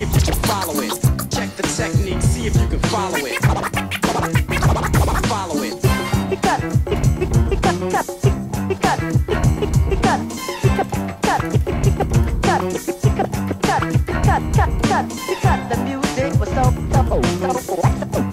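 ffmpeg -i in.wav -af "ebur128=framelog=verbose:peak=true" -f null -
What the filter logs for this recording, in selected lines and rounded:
Integrated loudness:
  I:         -18.8 LUFS
  Threshold: -28.8 LUFS
Loudness range:
  LRA:         0.8 LU
  Threshold: -38.8 LUFS
  LRA low:   -19.2 LUFS
  LRA high:  -18.4 LUFS
True peak:
  Peak:       -5.4 dBFS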